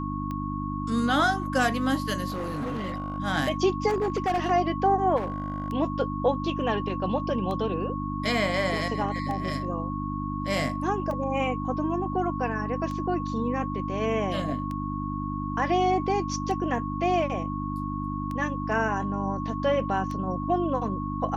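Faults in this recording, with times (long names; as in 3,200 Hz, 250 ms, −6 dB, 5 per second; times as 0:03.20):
mains hum 50 Hz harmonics 6 −32 dBFS
scratch tick 33 1/3 rpm −22 dBFS
whistle 1,100 Hz −34 dBFS
0:02.30–0:03.18: clipping −27.5 dBFS
0:03.88–0:04.51: clipping −21.5 dBFS
0:05.16–0:05.70: clipping −25.5 dBFS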